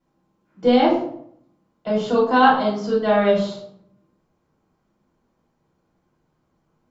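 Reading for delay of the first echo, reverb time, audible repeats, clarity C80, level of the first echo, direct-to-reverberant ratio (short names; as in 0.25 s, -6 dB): none, 0.65 s, none, 8.0 dB, none, -9.5 dB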